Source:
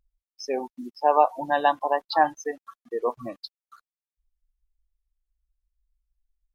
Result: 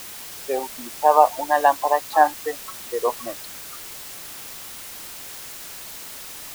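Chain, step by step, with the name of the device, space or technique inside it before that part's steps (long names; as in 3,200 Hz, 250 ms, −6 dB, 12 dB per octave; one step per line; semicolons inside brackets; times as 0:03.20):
wax cylinder (band-pass filter 390–2,000 Hz; tape wow and flutter; white noise bed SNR 13 dB)
level +5 dB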